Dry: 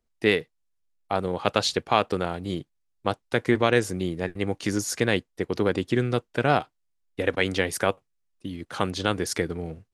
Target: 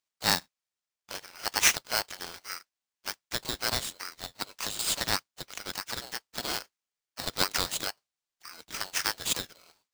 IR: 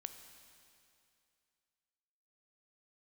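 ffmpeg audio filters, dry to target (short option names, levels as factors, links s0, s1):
-filter_complex "[0:a]acontrast=25,asplit=3[s0][s1][s2];[s1]asetrate=52444,aresample=44100,atempo=0.840896,volume=0.224[s3];[s2]asetrate=58866,aresample=44100,atempo=0.749154,volume=0.158[s4];[s0][s3][s4]amix=inputs=3:normalize=0,asuperpass=centerf=4100:order=4:qfactor=1,aeval=exprs='val(0)*sgn(sin(2*PI*1800*n/s))':c=same"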